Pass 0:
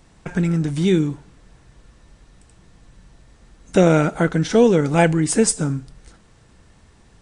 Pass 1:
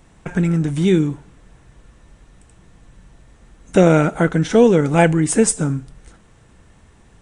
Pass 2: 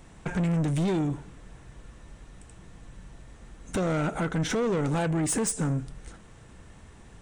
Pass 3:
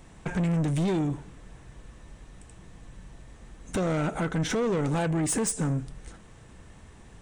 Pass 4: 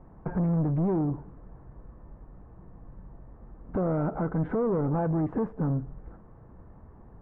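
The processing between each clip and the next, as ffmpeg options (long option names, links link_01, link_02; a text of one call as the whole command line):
ffmpeg -i in.wav -af "equalizer=frequency=4700:width_type=o:width=0.57:gain=-7,volume=2dB" out.wav
ffmpeg -i in.wav -af "alimiter=limit=-12.5dB:level=0:latency=1:release=186,asoftclip=type=tanh:threshold=-22.5dB" out.wav
ffmpeg -i in.wav -af "bandreject=frequency=1400:width=29" out.wav
ffmpeg -i in.wav -af "lowpass=frequency=1200:width=0.5412,lowpass=frequency=1200:width=1.3066" out.wav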